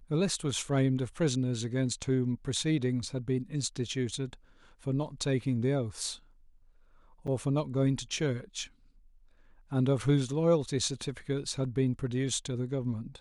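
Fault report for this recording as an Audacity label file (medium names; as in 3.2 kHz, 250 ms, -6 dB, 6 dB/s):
7.270000	7.280000	dropout 7.1 ms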